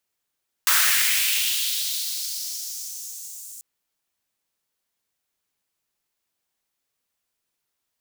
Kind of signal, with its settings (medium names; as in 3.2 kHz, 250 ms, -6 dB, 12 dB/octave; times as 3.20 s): swept filtered noise white, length 2.94 s highpass, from 1.2 kHz, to 7.5 kHz, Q 2.4, linear, gain ramp -24 dB